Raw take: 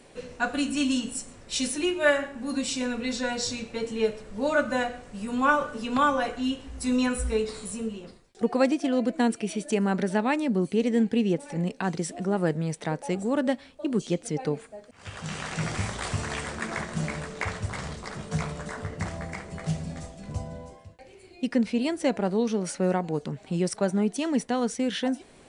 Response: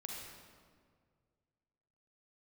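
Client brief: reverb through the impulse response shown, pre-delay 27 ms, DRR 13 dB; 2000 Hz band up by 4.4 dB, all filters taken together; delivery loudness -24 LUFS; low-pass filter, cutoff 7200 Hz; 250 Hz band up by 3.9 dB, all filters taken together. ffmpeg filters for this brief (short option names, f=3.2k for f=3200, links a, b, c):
-filter_complex "[0:a]lowpass=7.2k,equalizer=f=250:t=o:g=4.5,equalizer=f=2k:t=o:g=6,asplit=2[a][b];[1:a]atrim=start_sample=2205,adelay=27[c];[b][c]afir=irnorm=-1:irlink=0,volume=-11.5dB[d];[a][d]amix=inputs=2:normalize=0,volume=1dB"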